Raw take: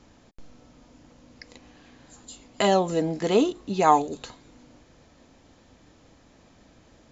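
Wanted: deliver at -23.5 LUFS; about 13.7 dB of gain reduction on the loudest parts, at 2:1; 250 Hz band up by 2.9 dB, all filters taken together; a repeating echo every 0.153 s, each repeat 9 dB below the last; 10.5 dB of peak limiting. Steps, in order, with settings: bell 250 Hz +4 dB; compressor 2:1, threshold -39 dBFS; limiter -29 dBFS; feedback echo 0.153 s, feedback 35%, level -9 dB; gain +18 dB

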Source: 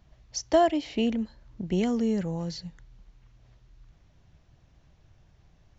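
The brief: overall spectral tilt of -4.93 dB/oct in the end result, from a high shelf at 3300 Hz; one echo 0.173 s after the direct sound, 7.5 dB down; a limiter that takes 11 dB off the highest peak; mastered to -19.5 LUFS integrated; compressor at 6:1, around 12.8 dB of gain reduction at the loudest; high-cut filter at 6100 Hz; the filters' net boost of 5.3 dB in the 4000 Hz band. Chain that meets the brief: LPF 6100 Hz; high shelf 3300 Hz +6.5 dB; bell 4000 Hz +3.5 dB; compressor 6:1, threshold -30 dBFS; limiter -31 dBFS; echo 0.173 s -7.5 dB; gain +19.5 dB

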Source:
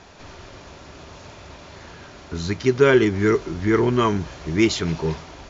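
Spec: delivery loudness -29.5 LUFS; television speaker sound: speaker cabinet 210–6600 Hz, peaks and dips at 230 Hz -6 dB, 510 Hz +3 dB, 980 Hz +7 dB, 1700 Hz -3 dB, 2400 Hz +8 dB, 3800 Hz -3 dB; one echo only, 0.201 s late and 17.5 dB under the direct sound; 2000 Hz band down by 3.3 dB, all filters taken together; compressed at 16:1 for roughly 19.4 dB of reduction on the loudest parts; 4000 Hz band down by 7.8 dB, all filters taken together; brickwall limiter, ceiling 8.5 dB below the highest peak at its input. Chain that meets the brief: bell 2000 Hz -4.5 dB; bell 4000 Hz -8.5 dB; compressor 16:1, threshold -30 dBFS; limiter -30 dBFS; speaker cabinet 210–6600 Hz, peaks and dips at 230 Hz -6 dB, 510 Hz +3 dB, 980 Hz +7 dB, 1700 Hz -3 dB, 2400 Hz +8 dB, 3800 Hz -3 dB; echo 0.201 s -17.5 dB; gain +11.5 dB

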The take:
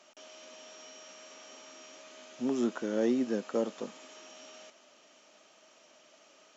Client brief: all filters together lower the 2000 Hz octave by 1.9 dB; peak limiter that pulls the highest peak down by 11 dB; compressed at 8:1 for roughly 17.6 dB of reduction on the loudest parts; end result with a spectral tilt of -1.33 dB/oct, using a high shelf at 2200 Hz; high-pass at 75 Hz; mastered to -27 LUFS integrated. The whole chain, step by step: HPF 75 Hz; bell 2000 Hz -5.5 dB; high shelf 2200 Hz +5 dB; compressor 8:1, threshold -43 dBFS; gain +24.5 dB; limiter -18 dBFS

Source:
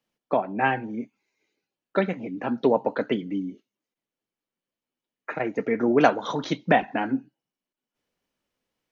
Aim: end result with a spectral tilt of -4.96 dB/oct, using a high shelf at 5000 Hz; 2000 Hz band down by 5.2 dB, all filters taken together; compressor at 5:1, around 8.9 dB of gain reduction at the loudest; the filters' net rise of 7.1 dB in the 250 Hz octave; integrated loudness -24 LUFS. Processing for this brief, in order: bell 250 Hz +8.5 dB; bell 2000 Hz -6 dB; high shelf 5000 Hz -6.5 dB; compressor 5:1, threshold -21 dBFS; gain +3.5 dB

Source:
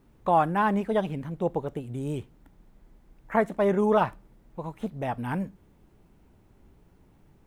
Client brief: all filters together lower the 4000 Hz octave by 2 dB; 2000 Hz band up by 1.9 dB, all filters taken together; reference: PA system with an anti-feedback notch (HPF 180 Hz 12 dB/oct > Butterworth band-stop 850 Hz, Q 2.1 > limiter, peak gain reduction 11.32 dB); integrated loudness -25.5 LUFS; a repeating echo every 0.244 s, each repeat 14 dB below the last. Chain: HPF 180 Hz 12 dB/oct; Butterworth band-stop 850 Hz, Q 2.1; bell 2000 Hz +3.5 dB; bell 4000 Hz -5 dB; feedback echo 0.244 s, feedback 20%, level -14 dB; gain +9 dB; limiter -15 dBFS

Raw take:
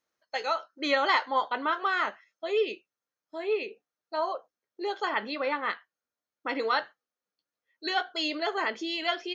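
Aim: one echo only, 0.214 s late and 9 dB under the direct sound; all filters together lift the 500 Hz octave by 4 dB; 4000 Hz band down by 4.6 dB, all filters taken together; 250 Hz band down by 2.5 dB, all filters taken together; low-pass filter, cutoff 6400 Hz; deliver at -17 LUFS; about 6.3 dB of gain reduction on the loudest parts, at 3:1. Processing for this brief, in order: LPF 6400 Hz; bell 250 Hz -7.5 dB; bell 500 Hz +7 dB; bell 4000 Hz -5.5 dB; compressor 3:1, threshold -26 dBFS; echo 0.214 s -9 dB; gain +15 dB

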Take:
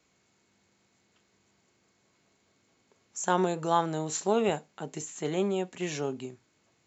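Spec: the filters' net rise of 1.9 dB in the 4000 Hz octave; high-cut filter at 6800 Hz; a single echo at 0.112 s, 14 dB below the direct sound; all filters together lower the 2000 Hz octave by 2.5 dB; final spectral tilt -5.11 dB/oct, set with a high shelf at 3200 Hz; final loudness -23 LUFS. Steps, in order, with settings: LPF 6800 Hz; bell 2000 Hz -4 dB; high shelf 3200 Hz -5.5 dB; bell 4000 Hz +8.5 dB; echo 0.112 s -14 dB; gain +7.5 dB

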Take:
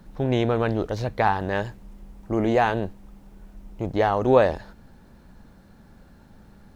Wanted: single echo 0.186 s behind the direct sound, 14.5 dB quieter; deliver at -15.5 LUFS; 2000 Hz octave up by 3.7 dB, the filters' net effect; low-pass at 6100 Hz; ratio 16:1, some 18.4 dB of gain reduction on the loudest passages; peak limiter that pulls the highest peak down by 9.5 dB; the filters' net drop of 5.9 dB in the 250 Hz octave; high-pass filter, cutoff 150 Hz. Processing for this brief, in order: HPF 150 Hz; LPF 6100 Hz; bell 250 Hz -7.5 dB; bell 2000 Hz +5 dB; compressor 16:1, threshold -31 dBFS; limiter -26.5 dBFS; echo 0.186 s -14.5 dB; gain +24.5 dB

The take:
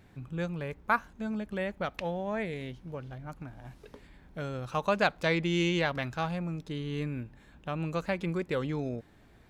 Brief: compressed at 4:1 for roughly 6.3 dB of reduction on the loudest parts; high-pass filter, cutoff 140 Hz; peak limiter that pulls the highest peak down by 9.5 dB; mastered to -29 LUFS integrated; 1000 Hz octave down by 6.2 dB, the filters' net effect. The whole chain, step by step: HPF 140 Hz; bell 1000 Hz -8.5 dB; compressor 4:1, threshold -32 dBFS; gain +11.5 dB; limiter -17.5 dBFS

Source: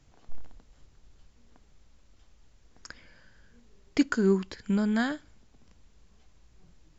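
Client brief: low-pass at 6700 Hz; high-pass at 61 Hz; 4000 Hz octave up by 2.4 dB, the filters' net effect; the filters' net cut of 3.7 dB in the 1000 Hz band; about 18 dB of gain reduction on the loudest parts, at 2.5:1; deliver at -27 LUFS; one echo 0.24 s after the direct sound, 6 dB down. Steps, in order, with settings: HPF 61 Hz; LPF 6700 Hz; bell 1000 Hz -6 dB; bell 4000 Hz +4 dB; compressor 2.5:1, threshold -46 dBFS; echo 0.24 s -6 dB; gain +17 dB

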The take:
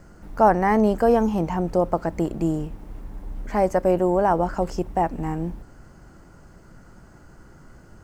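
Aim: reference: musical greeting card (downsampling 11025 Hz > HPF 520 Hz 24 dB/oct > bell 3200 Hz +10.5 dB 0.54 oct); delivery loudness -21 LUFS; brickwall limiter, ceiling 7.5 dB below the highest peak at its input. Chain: limiter -13 dBFS; downsampling 11025 Hz; HPF 520 Hz 24 dB/oct; bell 3200 Hz +10.5 dB 0.54 oct; gain +7.5 dB

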